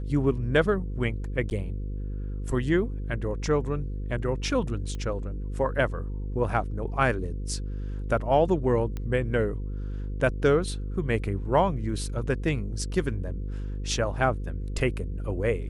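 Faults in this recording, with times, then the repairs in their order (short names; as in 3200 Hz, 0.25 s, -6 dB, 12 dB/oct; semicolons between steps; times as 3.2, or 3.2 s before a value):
buzz 50 Hz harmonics 10 -32 dBFS
1.5–1.51 gap 9.3 ms
4.95 pop -24 dBFS
8.97 pop -21 dBFS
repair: de-click; de-hum 50 Hz, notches 10; interpolate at 1.5, 9.3 ms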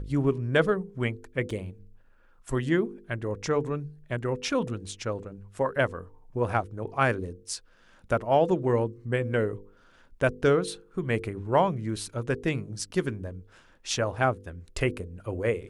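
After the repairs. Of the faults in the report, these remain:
none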